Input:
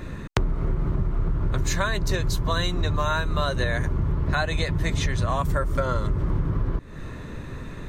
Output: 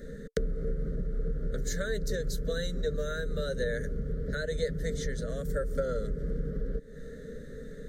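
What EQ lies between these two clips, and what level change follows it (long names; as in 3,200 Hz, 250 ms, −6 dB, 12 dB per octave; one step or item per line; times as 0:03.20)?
Chebyshev band-stop filter 550–1,700 Hz, order 2
parametric band 450 Hz +14 dB 0.23 octaves
phaser with its sweep stopped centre 510 Hz, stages 8
−4.5 dB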